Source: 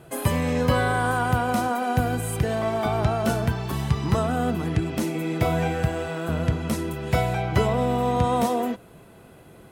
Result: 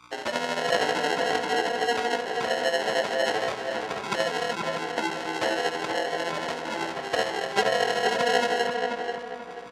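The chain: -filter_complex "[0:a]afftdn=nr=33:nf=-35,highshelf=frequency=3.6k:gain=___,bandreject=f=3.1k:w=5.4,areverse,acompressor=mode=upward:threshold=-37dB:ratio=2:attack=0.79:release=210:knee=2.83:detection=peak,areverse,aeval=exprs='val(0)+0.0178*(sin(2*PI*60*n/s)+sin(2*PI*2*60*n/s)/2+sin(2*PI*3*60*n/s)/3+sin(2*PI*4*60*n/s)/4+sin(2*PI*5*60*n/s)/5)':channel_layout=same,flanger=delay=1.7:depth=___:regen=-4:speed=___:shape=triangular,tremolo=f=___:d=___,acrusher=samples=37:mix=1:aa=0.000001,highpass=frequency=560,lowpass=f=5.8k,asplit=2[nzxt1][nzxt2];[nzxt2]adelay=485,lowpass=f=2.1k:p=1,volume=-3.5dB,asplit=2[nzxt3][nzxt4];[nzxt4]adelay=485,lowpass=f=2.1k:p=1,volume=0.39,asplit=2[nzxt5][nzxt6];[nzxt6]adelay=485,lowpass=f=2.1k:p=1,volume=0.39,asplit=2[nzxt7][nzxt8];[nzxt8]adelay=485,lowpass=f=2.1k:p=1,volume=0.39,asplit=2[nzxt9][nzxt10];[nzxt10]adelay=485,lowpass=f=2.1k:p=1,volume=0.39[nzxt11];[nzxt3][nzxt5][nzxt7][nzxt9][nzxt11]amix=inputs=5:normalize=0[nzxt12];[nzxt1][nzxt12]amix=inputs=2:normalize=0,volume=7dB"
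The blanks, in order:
5, 5, 0.57, 13, 0.49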